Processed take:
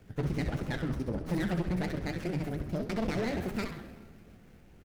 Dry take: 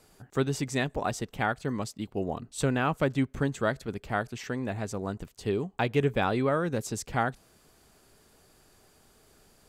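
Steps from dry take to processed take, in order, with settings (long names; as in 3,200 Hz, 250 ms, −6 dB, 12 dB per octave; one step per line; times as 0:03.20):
pitch glide at a constant tempo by −11 semitones ending unshifted
low-shelf EQ 100 Hz +10.5 dB
in parallel at +2 dB: downward compressor, threshold −37 dBFS, peak gain reduction 18 dB
on the sum: phaser with its sweep stopped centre 2,600 Hz, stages 8
echo with shifted repeats 132 ms, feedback 51%, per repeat −93 Hz, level −8 dB
wrong playback speed 7.5 ips tape played at 15 ips
on a send at −13 dB: convolution reverb RT60 2.0 s, pre-delay 6 ms
on the sum: hard clipping −21.5 dBFS, distortion −12 dB
flanger 1.4 Hz, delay 9.1 ms, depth 7.3 ms, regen +70%
windowed peak hold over 9 samples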